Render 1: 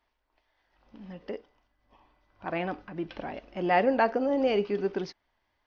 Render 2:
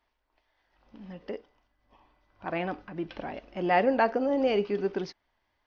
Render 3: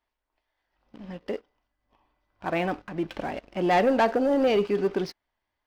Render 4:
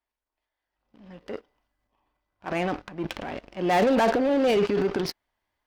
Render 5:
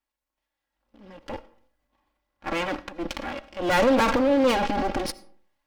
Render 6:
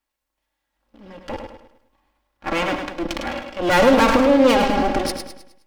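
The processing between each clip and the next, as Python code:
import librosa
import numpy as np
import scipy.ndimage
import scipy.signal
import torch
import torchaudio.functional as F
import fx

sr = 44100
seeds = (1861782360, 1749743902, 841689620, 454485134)

y1 = x
y2 = fx.leveller(y1, sr, passes=2)
y2 = y2 * librosa.db_to_amplitude(-2.5)
y3 = fx.transient(y2, sr, attack_db=-3, sustain_db=9)
y3 = fx.cheby_harmonics(y3, sr, harmonics=(7,), levels_db=(-22,), full_scale_db=-15.5)
y4 = fx.lower_of_two(y3, sr, delay_ms=3.6)
y4 = fx.rev_freeverb(y4, sr, rt60_s=0.57, hf_ratio=0.55, predelay_ms=40, drr_db=18.5)
y4 = y4 * librosa.db_to_amplitude(2.5)
y5 = fx.echo_feedback(y4, sr, ms=104, feedback_pct=41, wet_db=-6.5)
y5 = y5 * librosa.db_to_amplitude(5.0)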